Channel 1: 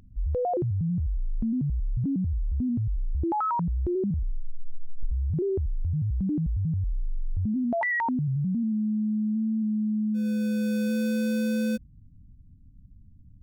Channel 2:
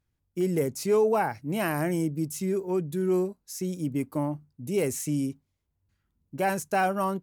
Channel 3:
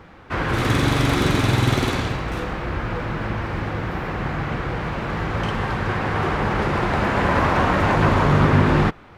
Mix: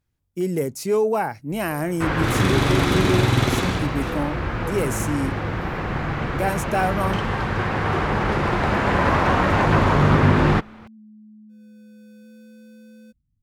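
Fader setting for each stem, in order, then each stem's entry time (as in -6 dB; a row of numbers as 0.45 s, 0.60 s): -20.0 dB, +2.5 dB, 0.0 dB; 1.35 s, 0.00 s, 1.70 s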